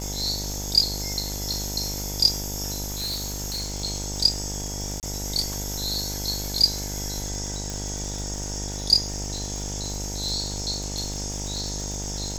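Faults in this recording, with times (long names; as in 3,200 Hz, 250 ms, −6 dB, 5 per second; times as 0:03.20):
mains buzz 50 Hz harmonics 19 −33 dBFS
surface crackle 150 per second −31 dBFS
0:02.85–0:03.74: clipping −25.5 dBFS
0:05.00–0:05.03: drop-out 28 ms
0:07.70: click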